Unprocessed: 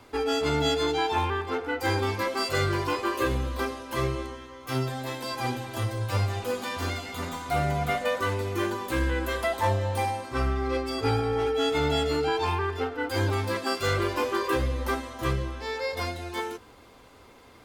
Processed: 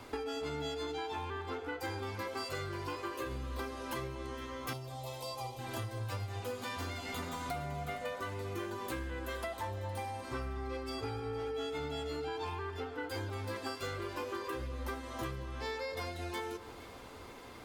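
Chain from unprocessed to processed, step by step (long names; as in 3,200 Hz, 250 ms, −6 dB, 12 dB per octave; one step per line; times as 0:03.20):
downward compressor 16 to 1, threshold −38 dBFS, peak gain reduction 18.5 dB
0:04.73–0:05.59: phaser with its sweep stopped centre 670 Hz, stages 4
on a send: delay that swaps between a low-pass and a high-pass 232 ms, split 1,400 Hz, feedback 70%, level −14 dB
on the sum: level +2 dB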